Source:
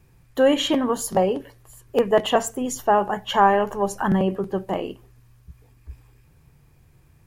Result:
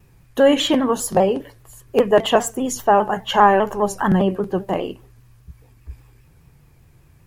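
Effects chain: shaped vibrato saw down 5 Hz, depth 100 cents; gain +3.5 dB

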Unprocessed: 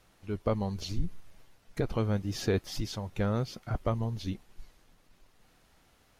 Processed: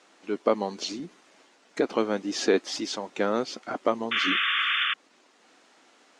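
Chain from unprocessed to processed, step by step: elliptic band-pass 270–7800 Hz, stop band 50 dB; painted sound noise, 4.11–4.94, 1100–3600 Hz -34 dBFS; gain +8.5 dB

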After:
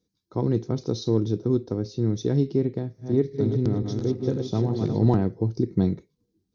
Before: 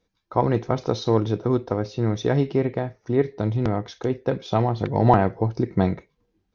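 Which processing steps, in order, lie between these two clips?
2.78–5.05 regenerating reverse delay 0.174 s, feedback 60%, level -5 dB; HPF 83 Hz; band shelf 1300 Hz -14.5 dB 2.8 oct

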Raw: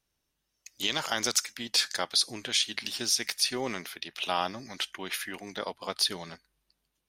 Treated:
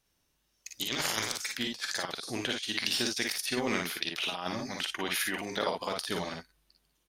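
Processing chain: 0.98–1.39 spectral limiter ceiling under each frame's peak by 17 dB; negative-ratio compressor -33 dBFS, ratio -0.5; on a send: early reflections 45 ms -7 dB, 57 ms -4.5 dB

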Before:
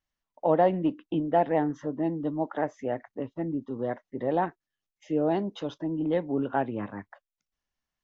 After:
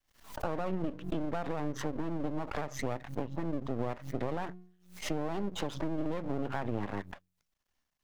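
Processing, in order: de-hum 45.2 Hz, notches 4; limiter -22.5 dBFS, peak gain reduction 11.5 dB; compressor, threshold -34 dBFS, peak gain reduction 8 dB; half-wave rectifier; backwards sustainer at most 120 dB/s; gain +6.5 dB

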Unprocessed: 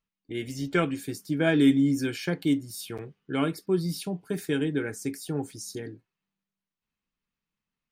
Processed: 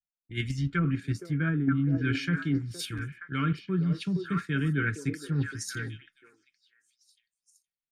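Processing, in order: EQ curve 150 Hz 0 dB, 770 Hz -28 dB, 1300 Hz -1 dB, 5200 Hz -12 dB; treble ducked by the level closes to 450 Hz, closed at -23.5 dBFS; in parallel at +1 dB: level quantiser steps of 13 dB; on the sum: delay with a stepping band-pass 0.468 s, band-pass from 510 Hz, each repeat 1.4 oct, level -3 dB; reverse; compressor 6:1, threshold -30 dBFS, peak gain reduction 10 dB; reverse; three-band expander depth 70%; gain +6.5 dB

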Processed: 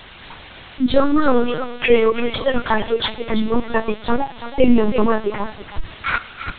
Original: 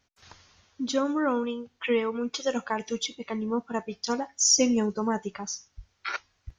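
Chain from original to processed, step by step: 5.55–6.07 tilt -3.5 dB/oct; flange 1.8 Hz, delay 9.4 ms, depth 3 ms, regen -7%; in parallel at -10.5 dB: requantised 6-bit, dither triangular; on the sum: thinning echo 0.334 s, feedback 22%, high-pass 690 Hz, level -9 dB; on a send at -14 dB: reverb, pre-delay 3 ms; on the sum: LPC vocoder at 8 kHz pitch kept; maximiser +14 dB; gain -1 dB

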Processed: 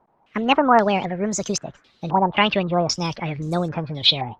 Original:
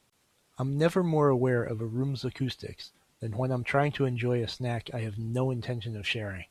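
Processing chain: speed glide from 168% -> 128%; stepped low-pass 3.8 Hz 880–7000 Hz; gain +6 dB

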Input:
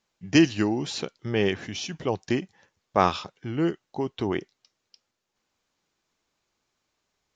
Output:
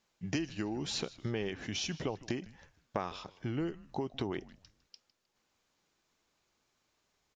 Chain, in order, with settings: compressor 12:1, threshold -32 dBFS, peak gain reduction 19 dB; on a send: frequency-shifting echo 0.155 s, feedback 32%, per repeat -140 Hz, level -19 dB

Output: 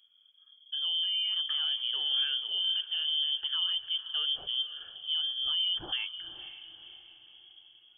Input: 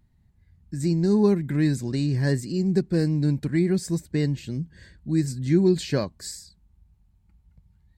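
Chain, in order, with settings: limiter -20.5 dBFS, peak gain reduction 12 dB; diffused feedback echo 0.514 s, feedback 44%, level -12.5 dB; inverted band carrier 3300 Hz; gain -4 dB

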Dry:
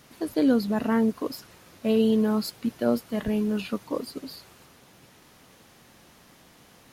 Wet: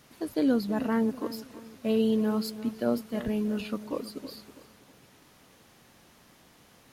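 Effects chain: darkening echo 0.324 s, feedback 39%, level -14 dB; gain -3.5 dB

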